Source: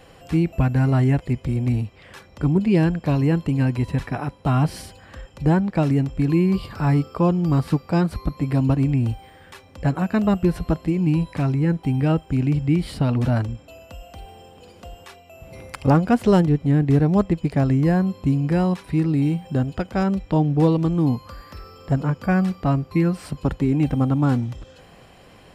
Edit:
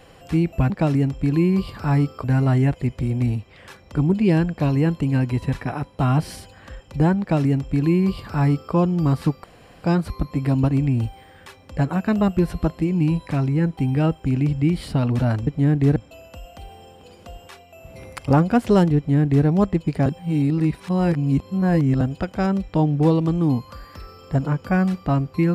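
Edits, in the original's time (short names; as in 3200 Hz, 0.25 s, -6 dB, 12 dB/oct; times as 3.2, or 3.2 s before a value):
5.66–7.2 copy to 0.7
7.9 insert room tone 0.40 s
16.54–17.03 copy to 13.53
17.63–19.58 reverse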